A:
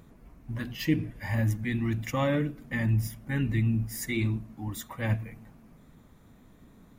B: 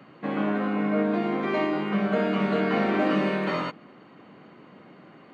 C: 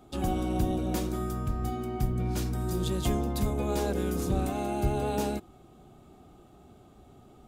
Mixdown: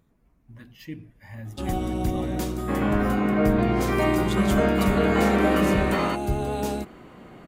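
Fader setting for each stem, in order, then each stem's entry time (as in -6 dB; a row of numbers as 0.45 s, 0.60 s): -11.5 dB, +2.5 dB, +2.0 dB; 0.00 s, 2.45 s, 1.45 s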